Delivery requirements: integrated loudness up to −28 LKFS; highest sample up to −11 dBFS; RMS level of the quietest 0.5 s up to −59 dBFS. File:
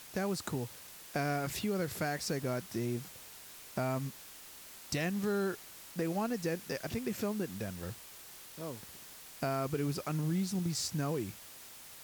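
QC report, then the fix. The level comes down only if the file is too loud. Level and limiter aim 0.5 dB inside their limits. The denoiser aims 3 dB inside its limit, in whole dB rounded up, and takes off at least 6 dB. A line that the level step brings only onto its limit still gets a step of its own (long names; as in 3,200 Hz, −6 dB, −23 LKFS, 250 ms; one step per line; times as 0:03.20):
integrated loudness −36.0 LKFS: in spec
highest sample −20.5 dBFS: in spec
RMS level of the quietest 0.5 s −51 dBFS: out of spec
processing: broadband denoise 11 dB, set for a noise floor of −51 dBFS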